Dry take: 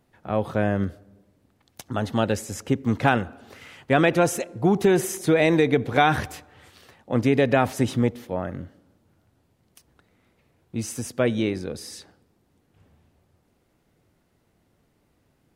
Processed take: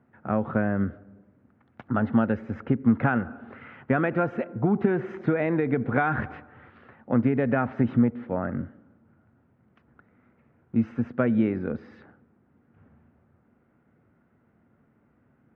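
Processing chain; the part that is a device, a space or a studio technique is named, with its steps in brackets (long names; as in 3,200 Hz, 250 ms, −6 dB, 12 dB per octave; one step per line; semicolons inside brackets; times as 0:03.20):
bass amplifier (downward compressor 5 to 1, threshold −22 dBFS, peak gain reduction 8.5 dB; loudspeaker in its box 65–2,100 Hz, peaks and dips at 130 Hz +4 dB, 230 Hz +9 dB, 1,400 Hz +7 dB)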